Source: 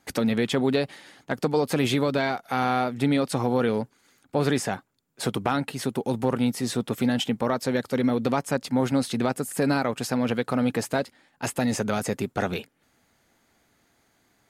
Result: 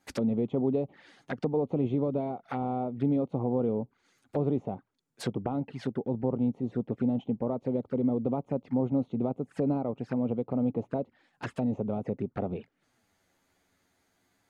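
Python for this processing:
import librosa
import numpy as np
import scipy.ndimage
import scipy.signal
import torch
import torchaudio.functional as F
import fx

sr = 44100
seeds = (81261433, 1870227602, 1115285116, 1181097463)

y = fx.env_flanger(x, sr, rest_ms=11.5, full_db=-23.5)
y = fx.env_lowpass_down(y, sr, base_hz=820.0, full_db=-24.5)
y = y * 10.0 ** (-3.5 / 20.0)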